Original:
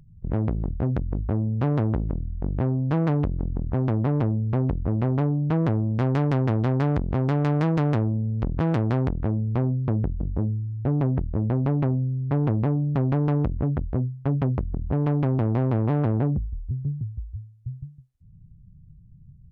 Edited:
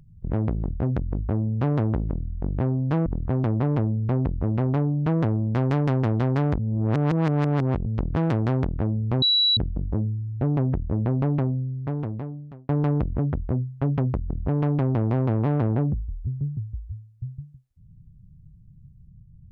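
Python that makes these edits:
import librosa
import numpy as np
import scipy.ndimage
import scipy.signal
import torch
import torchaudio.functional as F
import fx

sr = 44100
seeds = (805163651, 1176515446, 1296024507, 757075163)

y = fx.edit(x, sr, fx.cut(start_s=3.06, length_s=0.44),
    fx.reverse_span(start_s=7.03, length_s=1.27),
    fx.bleep(start_s=9.66, length_s=0.35, hz=3920.0, db=-16.5),
    fx.fade_out_span(start_s=11.76, length_s=1.37), tone=tone)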